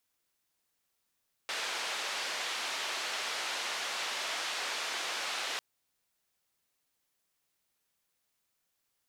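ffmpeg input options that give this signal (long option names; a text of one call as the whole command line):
ffmpeg -f lavfi -i "anoisesrc=color=white:duration=4.1:sample_rate=44100:seed=1,highpass=frequency=560,lowpass=frequency=4200,volume=-23.7dB" out.wav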